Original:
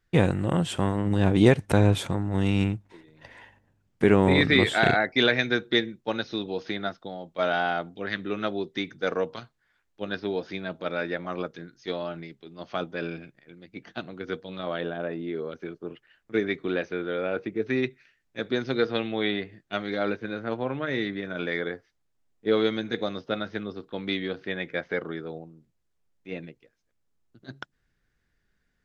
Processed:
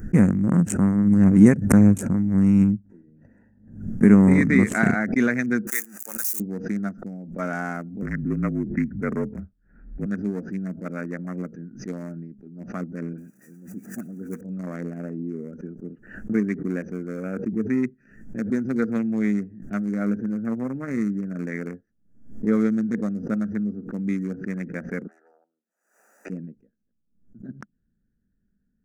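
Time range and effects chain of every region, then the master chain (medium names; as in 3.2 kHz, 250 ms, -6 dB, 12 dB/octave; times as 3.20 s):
5.67–6.40 s: zero-crossing glitches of -21 dBFS + high-pass 1 kHz
8.02–10.06 s: bass shelf 180 Hz +10 dB + frequency shift -39 Hz + careless resampling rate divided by 8×, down none, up filtered
13.13–14.41 s: zero-crossing glitches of -30 dBFS + high-pass 150 Hz 6 dB/octave + phase dispersion highs, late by 54 ms, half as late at 1.8 kHz
25.07–26.30 s: self-modulated delay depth 0.33 ms + high-pass 740 Hz 24 dB/octave + three bands compressed up and down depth 40%
whole clip: local Wiener filter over 41 samples; FFT filter 140 Hz 0 dB, 210 Hz +13 dB, 350 Hz -2 dB, 820 Hz -7 dB, 1.2 kHz 0 dB, 2.1 kHz -1 dB, 3.5 kHz -28 dB, 6.3 kHz +8 dB, 13 kHz +10 dB; swell ahead of each attack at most 96 dB/s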